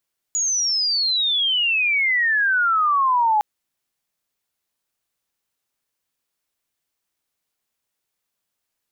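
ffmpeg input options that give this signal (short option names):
-f lavfi -i "aevalsrc='pow(10,(-18.5+4*t/3.06)/20)*sin(2*PI*6900*3.06/log(830/6900)*(exp(log(830/6900)*t/3.06)-1))':d=3.06:s=44100"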